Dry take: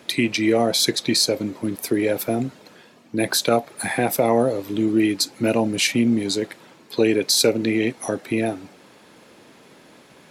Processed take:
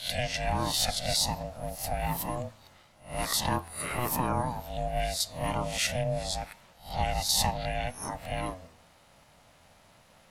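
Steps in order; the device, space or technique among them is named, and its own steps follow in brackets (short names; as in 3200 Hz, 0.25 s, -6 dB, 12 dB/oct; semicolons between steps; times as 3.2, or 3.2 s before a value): spectral swells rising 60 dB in 0.39 s; alien voice (ring modulator 370 Hz; flange 1.2 Hz, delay 8.7 ms, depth 3.9 ms, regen +90%); high shelf 6600 Hz +5 dB; gain -4 dB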